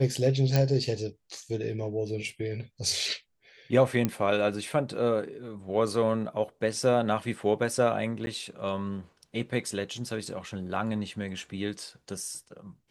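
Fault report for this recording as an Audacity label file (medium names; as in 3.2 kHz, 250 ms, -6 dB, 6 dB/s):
0.560000	0.560000	pop -11 dBFS
4.050000	4.050000	pop -12 dBFS
8.260000	8.270000	dropout 10 ms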